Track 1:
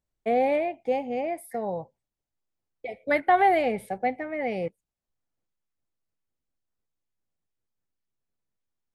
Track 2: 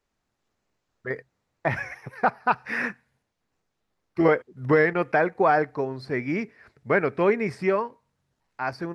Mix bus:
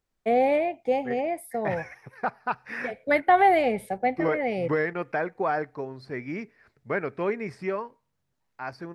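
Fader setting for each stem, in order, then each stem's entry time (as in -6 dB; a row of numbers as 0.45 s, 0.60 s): +1.5 dB, -6.5 dB; 0.00 s, 0.00 s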